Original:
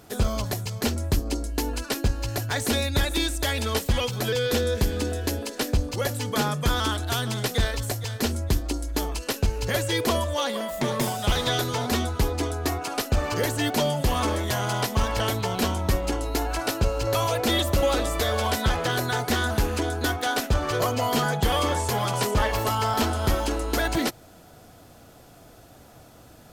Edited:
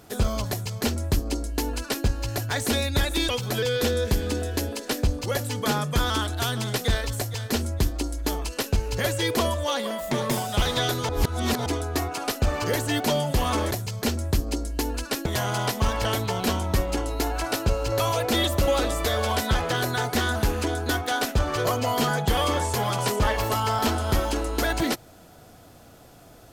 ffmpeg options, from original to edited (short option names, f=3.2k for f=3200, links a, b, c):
-filter_complex "[0:a]asplit=6[a][b][c][d][e][f];[a]atrim=end=3.292[g];[b]atrim=start=3.988:end=11.792[h];[c]atrim=start=11.788:end=12.362,asetpts=PTS-STARTPTS,areverse[i];[d]atrim=start=12.358:end=14.412[j];[e]atrim=start=0.498:end=2.052[k];[f]atrim=start=14.408[l];[g][h]acrossfade=d=0.004:c1=hsin:c2=hsin[m];[m][i]acrossfade=d=0.004:c1=hsin:c2=hsin[n];[n][j]acrossfade=d=0.004:c1=hsin:c2=hsin[o];[o][k]acrossfade=d=0.004:c1=hsin:c2=hsin[p];[p][l]acrossfade=d=0.004:c1=hsin:c2=hsin"